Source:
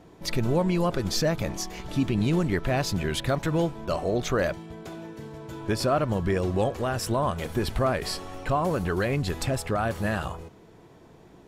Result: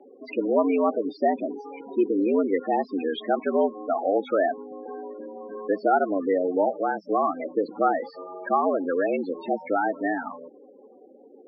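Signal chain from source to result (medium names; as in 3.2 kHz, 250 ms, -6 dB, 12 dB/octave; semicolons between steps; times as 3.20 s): loudest bins only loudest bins 16; mistuned SSB +89 Hz 180–3100 Hz; trim +4 dB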